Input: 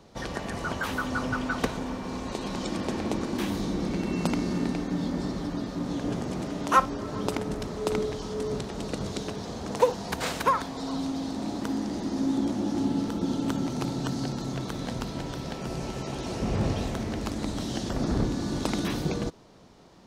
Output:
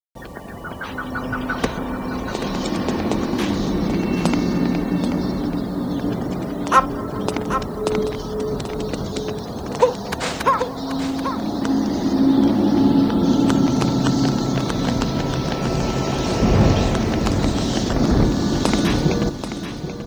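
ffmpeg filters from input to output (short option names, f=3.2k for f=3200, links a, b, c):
-filter_complex "[0:a]asplit=2[a][b];[b]adelay=218,lowpass=f=1.7k:p=1,volume=-23.5dB,asplit=2[c][d];[d]adelay=218,lowpass=f=1.7k:p=1,volume=0.52,asplit=2[e][f];[f]adelay=218,lowpass=f=1.7k:p=1,volume=0.52[g];[c][e][g]amix=inputs=3:normalize=0[h];[a][h]amix=inputs=2:normalize=0,dynaudnorm=f=390:g=7:m=15dB,asettb=1/sr,asplit=3[i][j][k];[i]atrim=end=12.134[l];[j]atrim=start=12.13:end=13.23,asetpts=PTS-STARTPTS,afade=t=in:d=0.004:c=qsin,afade=t=out:st=1.096:d=0.004:c=qsin,lowpass=f=5.5k:w=0.5412,lowpass=f=5.5k:w=1.3066[m];[k]atrim=start=13.226[n];[l][m]acrossfade=d=0.004:c1=hsin:c2=qsin[o];[o][n]acrossfade=d=0.004:c1=qsin:c2=hsin,afftfilt=real='re*gte(hypot(re,im),0.0178)':imag='im*gte(hypot(re,im),0.0178)':win_size=1024:overlap=0.75,acrusher=bits=7:mix=0:aa=0.000001,asplit=2[p][q];[q]aecho=0:1:783:0.335[r];[p][r]amix=inputs=2:normalize=0,volume=-1dB"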